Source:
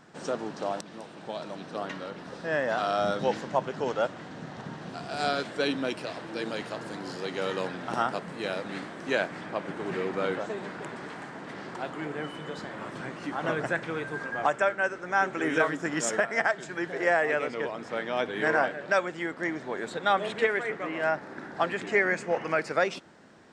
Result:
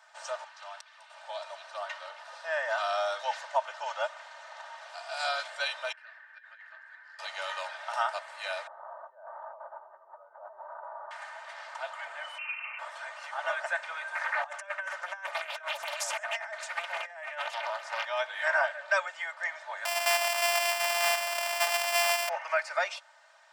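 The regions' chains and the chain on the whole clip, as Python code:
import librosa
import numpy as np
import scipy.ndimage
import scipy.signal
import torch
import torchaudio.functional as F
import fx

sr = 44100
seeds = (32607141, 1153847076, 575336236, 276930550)

y = fx.chain(x, sr, fx.highpass(hz=1400.0, slope=12),
    fx.high_shelf(hz=4400.0, db=-11.0), at=(0.44, 1.1))
y = fx.chain(y, sr, fx.bandpass_q(hz=1700.0, q=8.2),
    fx.over_compress(threshold_db=-48.0, ratio=-0.5), at=(5.92, 7.19))
y = fx.chain(y, sr, fx.cheby2_lowpass(hz=2200.0, order=4, stop_db=40),
    fx.over_compress(threshold_db=-40.0, ratio=-1.0), at=(8.67, 11.11))
y = fx.chain(y, sr, fx.peak_eq(hz=1200.0, db=-4.5, octaves=0.85),
    fx.freq_invert(carrier_hz=2900), at=(12.38, 12.79))
y = fx.chain(y, sr, fx.over_compress(threshold_db=-31.0, ratio=-0.5),
    fx.echo_single(ms=134, db=-23.5),
    fx.doppler_dist(depth_ms=0.86), at=(14.15, 18.05))
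y = fx.chain(y, sr, fx.sample_sort(block=128),
    fx.env_flatten(amount_pct=70), at=(19.85, 22.29))
y = scipy.signal.sosfilt(scipy.signal.butter(8, 650.0, 'highpass', fs=sr, output='sos'), y)
y = y + 0.79 * np.pad(y, (int(3.3 * sr / 1000.0), 0))[:len(y)]
y = y * 10.0 ** (-2.0 / 20.0)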